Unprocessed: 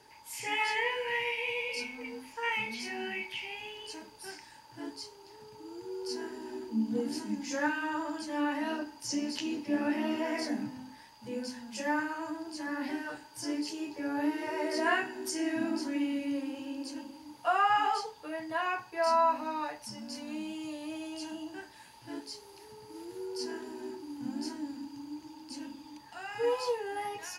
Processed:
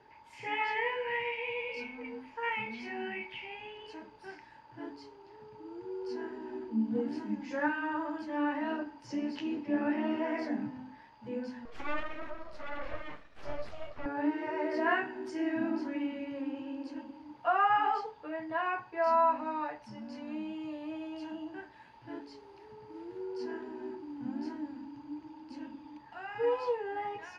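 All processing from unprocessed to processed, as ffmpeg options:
-filter_complex "[0:a]asettb=1/sr,asplit=3[a][b][c];[a]atrim=end=11.654[d];[b]atrim=start=11.65:end=14.06,asetpts=PTS-STARTPTS,afade=t=in:d=0.004:c=qsin,afade=t=out:st=2.406:d=0.004:c=qsin,highpass=42,aeval=exprs='abs(val(0))':c=same[e];[c]atrim=start=14.056[f];[d][e]acrossfade=d=0.004:c1=hsin:c2=qsin[g];[g][f]acrossfade=d=0.004:c1=qsin:c2=hsin,lowpass=2.2k,bandreject=f=94.24:t=h:w=4,bandreject=f=188.48:t=h:w=4,bandreject=f=282.72:t=h:w=4"

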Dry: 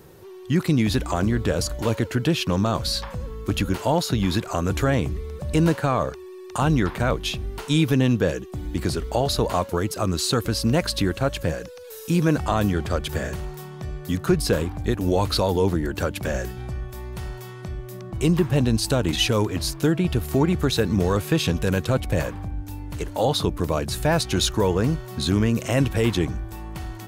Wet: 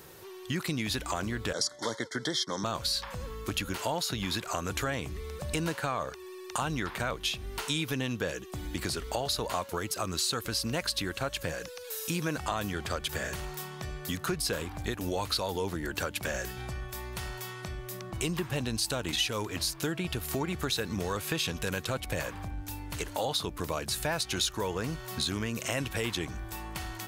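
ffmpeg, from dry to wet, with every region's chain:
-filter_complex "[0:a]asettb=1/sr,asplit=3[a][b][c];[a]atrim=end=1.534[d];[b]atrim=start=1.53:end=2.64,asetpts=PTS-STARTPTS,afade=t=in:d=0.004:c=qsin,afade=t=out:st=1.106:d=0.004:c=qsin,agate=range=-33dB:threshold=-27dB:ratio=3:release=100:detection=peak,asuperstop=centerf=2600:order=20:qfactor=2.7,highpass=f=140:w=0.5412,highpass=f=140:w=1.3066,equalizer=f=170:t=q:w=4:g=-7,equalizer=f=2.5k:t=q:w=4:g=10,equalizer=f=5.4k:t=q:w=4:g=8,lowpass=f=9.7k:w=0.5412,lowpass=f=9.7k:w=1.3066[e];[c]atrim=start=2.636[f];[d][e]acrossfade=d=0.004:c1=hsin:c2=qsin[g];[g][f]acrossfade=d=0.004:c1=qsin:c2=hsin,tiltshelf=f=730:g=-6,acompressor=threshold=-30dB:ratio=2.5,volume=-1.5dB"

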